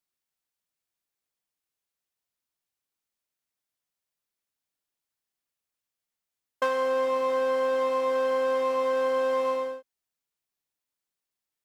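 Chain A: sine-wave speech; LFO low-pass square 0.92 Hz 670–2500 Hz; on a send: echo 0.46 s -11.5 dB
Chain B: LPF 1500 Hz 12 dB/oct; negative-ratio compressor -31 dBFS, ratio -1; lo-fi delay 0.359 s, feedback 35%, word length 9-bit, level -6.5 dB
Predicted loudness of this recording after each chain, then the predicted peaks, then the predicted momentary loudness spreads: -22.5, -30.5 LUFS; -12.0, -19.5 dBFS; 13, 10 LU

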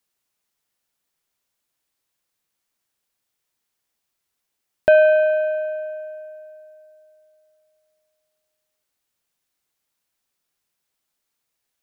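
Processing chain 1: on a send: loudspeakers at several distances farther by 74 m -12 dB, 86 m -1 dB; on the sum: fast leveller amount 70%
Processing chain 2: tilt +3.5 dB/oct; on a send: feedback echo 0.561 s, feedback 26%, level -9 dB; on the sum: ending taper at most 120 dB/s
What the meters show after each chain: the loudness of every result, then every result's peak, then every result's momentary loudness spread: -15.5, -20.0 LUFS; -2.0, -5.5 dBFS; 21, 19 LU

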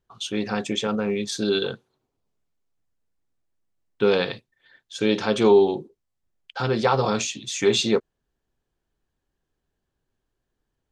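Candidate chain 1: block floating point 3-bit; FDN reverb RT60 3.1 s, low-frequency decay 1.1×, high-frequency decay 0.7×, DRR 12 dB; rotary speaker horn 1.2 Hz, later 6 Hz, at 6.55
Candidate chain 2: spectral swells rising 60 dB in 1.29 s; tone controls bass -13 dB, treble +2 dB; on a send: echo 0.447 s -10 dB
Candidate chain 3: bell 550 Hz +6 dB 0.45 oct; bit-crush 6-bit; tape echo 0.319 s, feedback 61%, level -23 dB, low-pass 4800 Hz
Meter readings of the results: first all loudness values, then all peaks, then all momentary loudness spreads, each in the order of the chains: -24.0, -21.5, -21.5 LUFS; -6.5, -2.0, -4.5 dBFS; 19, 14, 14 LU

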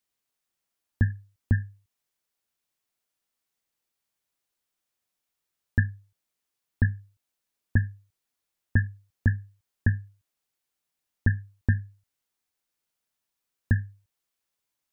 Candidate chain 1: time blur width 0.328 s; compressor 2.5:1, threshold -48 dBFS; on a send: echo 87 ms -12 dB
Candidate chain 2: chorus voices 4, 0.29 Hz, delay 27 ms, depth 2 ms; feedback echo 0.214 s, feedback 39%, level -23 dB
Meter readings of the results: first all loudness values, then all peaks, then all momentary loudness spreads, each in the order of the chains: -48.5, -32.0 LUFS; -35.0, -13.0 dBFS; 14, 15 LU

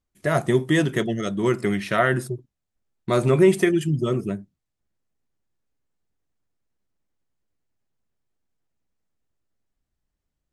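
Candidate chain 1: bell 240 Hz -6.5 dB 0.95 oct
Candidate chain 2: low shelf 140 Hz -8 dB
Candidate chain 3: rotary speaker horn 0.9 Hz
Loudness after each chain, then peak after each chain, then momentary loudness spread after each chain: -23.5, -23.0, -23.5 LUFS; -7.5, -6.5, -7.0 dBFS; 16, 15, 13 LU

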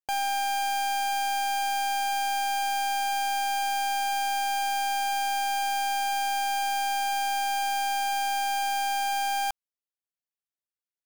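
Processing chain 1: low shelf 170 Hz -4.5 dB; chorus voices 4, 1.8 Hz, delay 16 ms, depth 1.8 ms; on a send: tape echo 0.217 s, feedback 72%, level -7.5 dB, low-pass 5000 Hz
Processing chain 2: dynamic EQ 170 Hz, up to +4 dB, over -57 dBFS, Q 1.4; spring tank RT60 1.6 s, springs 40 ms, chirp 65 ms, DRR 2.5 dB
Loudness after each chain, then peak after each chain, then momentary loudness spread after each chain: -29.0, -21.5 LUFS; -19.0, -15.0 dBFS; 2, 0 LU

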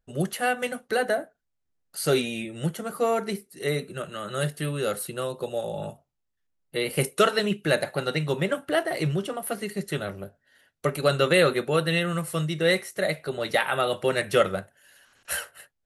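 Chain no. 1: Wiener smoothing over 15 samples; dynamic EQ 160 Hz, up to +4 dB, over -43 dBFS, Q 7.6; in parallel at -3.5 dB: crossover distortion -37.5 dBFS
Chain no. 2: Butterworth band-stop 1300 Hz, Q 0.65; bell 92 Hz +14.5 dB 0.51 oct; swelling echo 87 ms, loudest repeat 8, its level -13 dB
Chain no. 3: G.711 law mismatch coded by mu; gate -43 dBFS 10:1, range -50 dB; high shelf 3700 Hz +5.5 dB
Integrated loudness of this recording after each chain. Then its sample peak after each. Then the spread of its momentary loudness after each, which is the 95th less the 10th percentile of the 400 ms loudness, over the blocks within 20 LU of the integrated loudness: -23.0, -26.0, -25.0 LUFS; -3.5, -9.5, -6.0 dBFS; 13, 9, 11 LU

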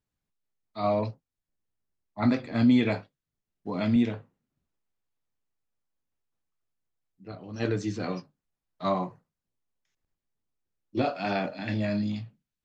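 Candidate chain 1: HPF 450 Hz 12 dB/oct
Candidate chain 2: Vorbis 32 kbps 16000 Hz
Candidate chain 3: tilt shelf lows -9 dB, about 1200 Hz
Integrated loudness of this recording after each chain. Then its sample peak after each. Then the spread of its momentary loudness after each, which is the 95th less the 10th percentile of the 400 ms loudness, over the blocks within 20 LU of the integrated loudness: -34.0, -28.5, -33.0 LUFS; -16.5, -12.5, -14.0 dBFS; 17, 18, 16 LU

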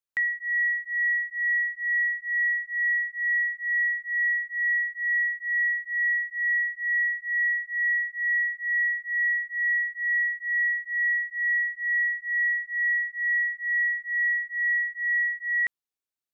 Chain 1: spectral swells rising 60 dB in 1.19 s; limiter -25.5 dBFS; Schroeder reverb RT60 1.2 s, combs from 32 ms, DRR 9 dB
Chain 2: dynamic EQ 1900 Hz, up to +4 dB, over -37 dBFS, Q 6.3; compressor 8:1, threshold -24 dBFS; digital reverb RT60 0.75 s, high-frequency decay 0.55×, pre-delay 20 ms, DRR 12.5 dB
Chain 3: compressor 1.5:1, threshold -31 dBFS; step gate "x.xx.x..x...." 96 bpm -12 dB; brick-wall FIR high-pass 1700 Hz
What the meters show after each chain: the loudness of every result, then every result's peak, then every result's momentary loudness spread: -28.5, -26.0, -30.5 LUFS; -22.5, -17.5, -23.5 dBFS; 0, 1, 11 LU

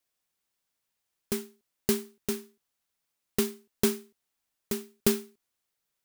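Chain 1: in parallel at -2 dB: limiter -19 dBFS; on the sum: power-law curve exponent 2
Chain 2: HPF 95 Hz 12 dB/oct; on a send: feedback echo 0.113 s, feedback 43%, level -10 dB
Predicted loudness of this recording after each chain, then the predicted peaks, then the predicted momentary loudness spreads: -36.0, -31.5 LUFS; -7.0, -7.5 dBFS; 13, 16 LU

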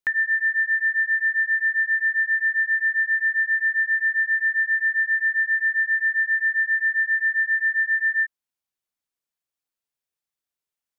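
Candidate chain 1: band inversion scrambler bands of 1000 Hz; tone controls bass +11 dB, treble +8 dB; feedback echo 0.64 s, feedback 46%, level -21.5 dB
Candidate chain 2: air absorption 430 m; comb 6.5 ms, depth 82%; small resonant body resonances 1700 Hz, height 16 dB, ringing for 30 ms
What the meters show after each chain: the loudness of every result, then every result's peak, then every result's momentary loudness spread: -21.5, -22.0 LUFS; -14.5, -9.0 dBFS; 0, 0 LU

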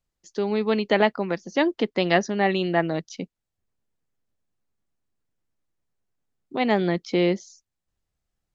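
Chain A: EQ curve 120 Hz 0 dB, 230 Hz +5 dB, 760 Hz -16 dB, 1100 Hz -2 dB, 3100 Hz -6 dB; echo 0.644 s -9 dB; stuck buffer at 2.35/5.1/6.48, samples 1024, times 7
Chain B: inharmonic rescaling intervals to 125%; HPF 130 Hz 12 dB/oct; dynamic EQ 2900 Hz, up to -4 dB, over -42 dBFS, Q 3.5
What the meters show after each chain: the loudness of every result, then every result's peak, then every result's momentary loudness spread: -26.0, -26.5 LUFS; -10.5, -9.0 dBFS; 14, 13 LU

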